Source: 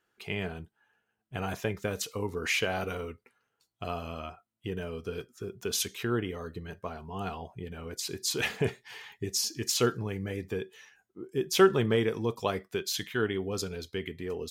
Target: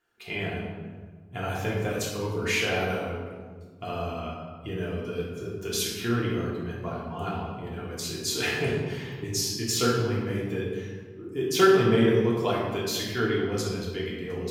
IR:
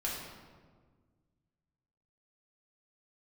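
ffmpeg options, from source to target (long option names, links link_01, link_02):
-filter_complex "[1:a]atrim=start_sample=2205[link_01];[0:a][link_01]afir=irnorm=-1:irlink=0"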